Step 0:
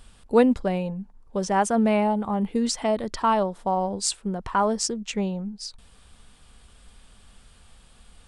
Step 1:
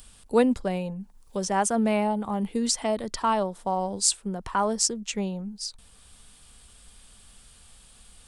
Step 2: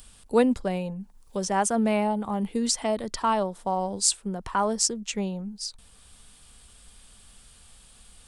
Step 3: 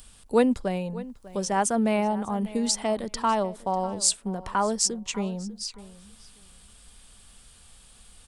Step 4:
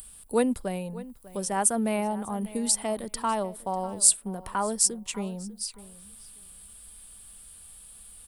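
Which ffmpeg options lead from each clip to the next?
-filter_complex "[0:a]highshelf=f=6k:g=11.5,acrossover=split=270|2300[a][b][c];[c]acompressor=mode=upward:threshold=-47dB:ratio=2.5[d];[a][b][d]amix=inputs=3:normalize=0,volume=-3dB"
-af anull
-filter_complex "[0:a]asplit=2[a][b];[b]adelay=596,lowpass=f=4.4k:p=1,volume=-17.5dB,asplit=2[c][d];[d]adelay=596,lowpass=f=4.4k:p=1,volume=0.16[e];[a][c][e]amix=inputs=3:normalize=0"
-af "aexciter=amount=8.9:drive=1.5:freq=8.8k,volume=-3.5dB"

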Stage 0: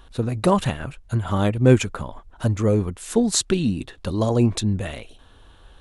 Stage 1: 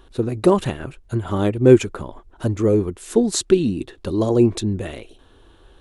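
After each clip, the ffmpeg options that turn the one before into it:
-af "equalizer=f=360:t=o:w=0.67:g=11,volume=-2dB"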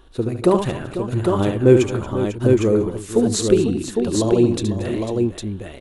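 -af "aecho=1:1:72|229|496|806:0.447|0.141|0.266|0.631,volume=-1dB"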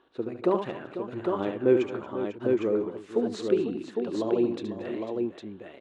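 -af "highpass=260,lowpass=2.8k,volume=-7.5dB"

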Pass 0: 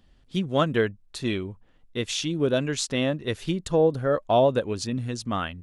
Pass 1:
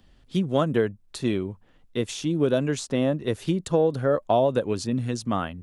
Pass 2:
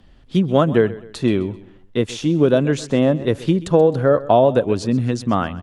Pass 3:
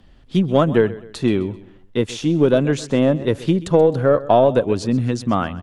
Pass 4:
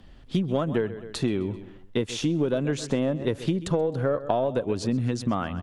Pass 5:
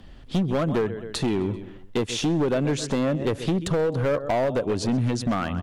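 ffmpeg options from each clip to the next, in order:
-filter_complex "[0:a]acrossover=split=89|1200|7300[a][b][c][d];[a]acompressor=threshold=-57dB:ratio=4[e];[b]acompressor=threshold=-21dB:ratio=4[f];[c]acompressor=threshold=-42dB:ratio=4[g];[d]acompressor=threshold=-43dB:ratio=4[h];[e][f][g][h]amix=inputs=4:normalize=0,volume=3.5dB"
-af "aemphasis=mode=reproduction:type=cd,aecho=1:1:130|260|390:0.126|0.0491|0.0191,volume=7dB"
-af "aeval=exprs='0.891*(cos(1*acos(clip(val(0)/0.891,-1,1)))-cos(1*PI/2))+0.0282*(cos(4*acos(clip(val(0)/0.891,-1,1)))-cos(4*PI/2))':c=same"
-af "acompressor=threshold=-22dB:ratio=6"
-af "asoftclip=type=hard:threshold=-23dB,volume=4dB"

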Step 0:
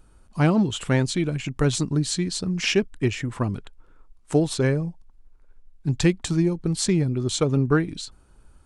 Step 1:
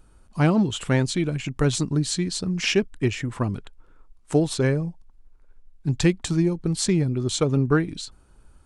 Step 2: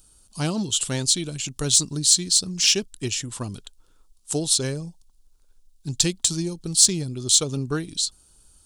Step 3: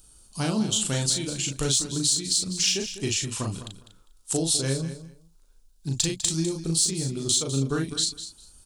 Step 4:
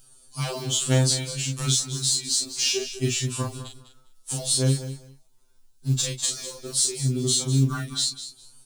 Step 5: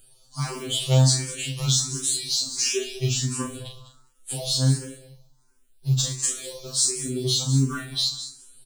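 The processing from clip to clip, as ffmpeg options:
-af anull
-af "aexciter=amount=6:drive=7.5:freq=3.1k,volume=-6.5dB"
-filter_complex "[0:a]acompressor=threshold=-22dB:ratio=6,asplit=2[a][b];[b]adelay=37,volume=-3.5dB[c];[a][c]amix=inputs=2:normalize=0,aecho=1:1:201|402:0.237|0.0403"
-af "asoftclip=type=hard:threshold=-12dB,acrusher=bits=6:mode=log:mix=0:aa=0.000001,afftfilt=real='re*2.45*eq(mod(b,6),0)':imag='im*2.45*eq(mod(b,6),0)':win_size=2048:overlap=0.75,volume=2.5dB"
-filter_complex "[0:a]asplit=2[a][b];[b]aecho=0:1:69|138|207|276|345:0.266|0.133|0.0665|0.0333|0.0166[c];[a][c]amix=inputs=2:normalize=0,asplit=2[d][e];[e]afreqshift=1.4[f];[d][f]amix=inputs=2:normalize=1,volume=2.5dB"

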